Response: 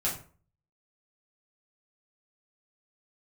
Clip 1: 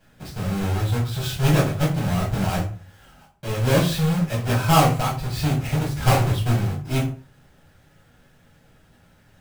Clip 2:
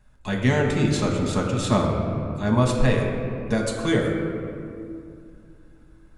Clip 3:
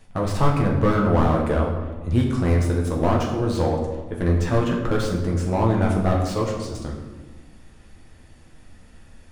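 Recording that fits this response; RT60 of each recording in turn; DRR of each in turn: 1; 0.40, 2.4, 1.3 s; -6.0, -0.5, -2.0 dB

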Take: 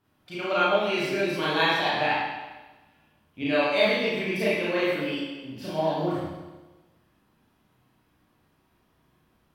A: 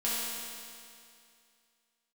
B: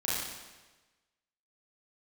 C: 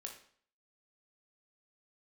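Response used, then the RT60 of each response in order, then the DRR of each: B; 2.4, 1.2, 0.55 s; -9.0, -8.5, 1.5 dB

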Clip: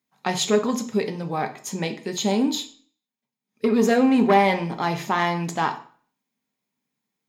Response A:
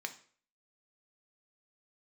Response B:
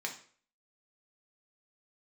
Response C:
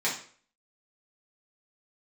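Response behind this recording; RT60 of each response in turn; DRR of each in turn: A; 0.50, 0.50, 0.50 s; 6.0, 0.5, -7.5 dB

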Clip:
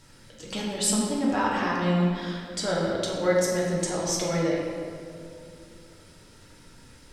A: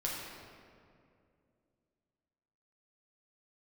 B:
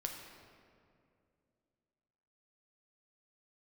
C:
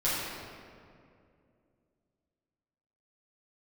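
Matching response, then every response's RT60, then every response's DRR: A; 2.4, 2.4, 2.4 s; -5.0, 1.5, -11.0 dB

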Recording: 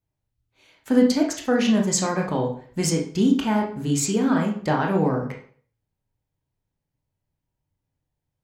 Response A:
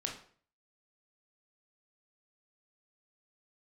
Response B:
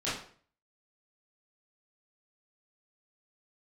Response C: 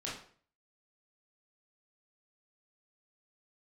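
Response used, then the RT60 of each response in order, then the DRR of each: A; 0.50, 0.50, 0.50 s; 0.5, -11.5, -6.5 dB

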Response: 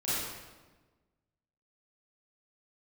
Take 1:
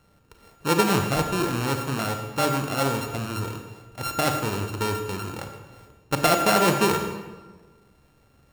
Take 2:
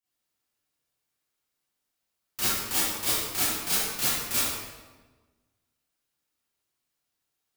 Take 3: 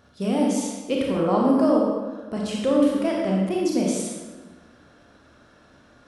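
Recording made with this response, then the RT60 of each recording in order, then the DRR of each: 2; 1.3, 1.3, 1.3 s; 5.0, -12.5, -2.5 dB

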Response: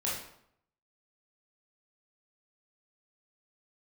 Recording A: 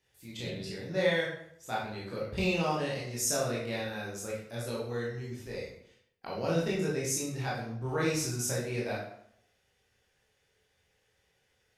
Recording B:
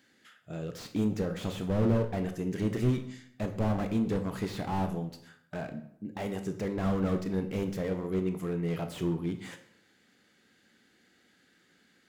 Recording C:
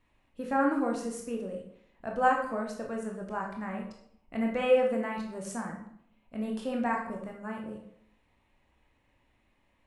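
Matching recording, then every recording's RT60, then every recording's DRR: A; 0.70, 0.70, 0.70 s; -6.5, 6.5, 0.0 dB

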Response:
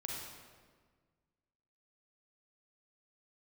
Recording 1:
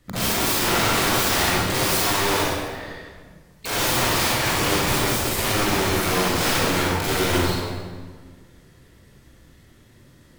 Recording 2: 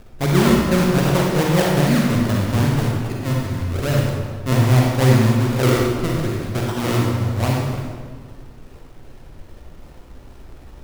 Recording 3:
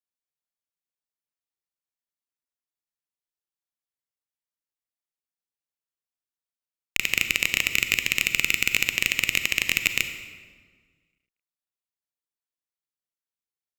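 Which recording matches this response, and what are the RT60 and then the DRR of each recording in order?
2; 1.6, 1.6, 1.6 s; -8.0, -2.5, 7.5 dB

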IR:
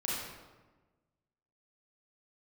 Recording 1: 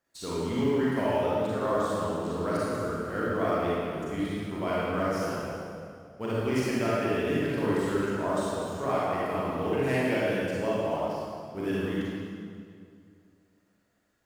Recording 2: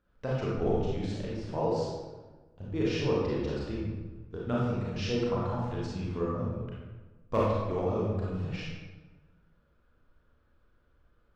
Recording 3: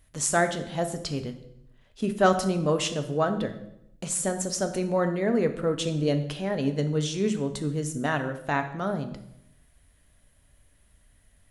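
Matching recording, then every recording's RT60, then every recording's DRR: 2; 2.2, 1.3, 0.75 s; -8.0, -6.5, 7.0 dB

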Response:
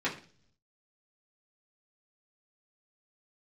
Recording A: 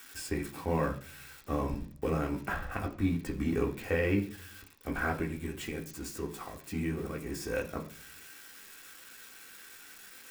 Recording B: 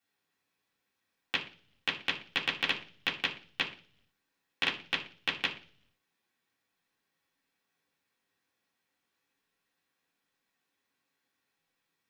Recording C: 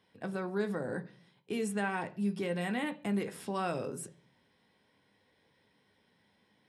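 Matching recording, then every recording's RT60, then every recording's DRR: B; 0.45, 0.45, 0.45 s; -0.5, -8.0, 6.0 dB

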